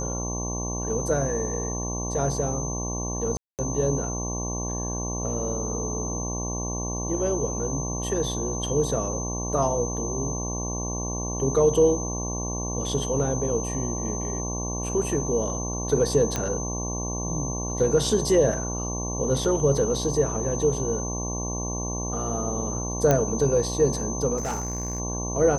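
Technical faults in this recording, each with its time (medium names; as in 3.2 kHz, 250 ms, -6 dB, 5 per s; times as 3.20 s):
buzz 60 Hz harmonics 19 -31 dBFS
whine 6.2 kHz -32 dBFS
3.37–3.59 s: dropout 218 ms
16.36 s: pop -11 dBFS
23.11 s: pop -7 dBFS
24.37–25.00 s: clipped -24.5 dBFS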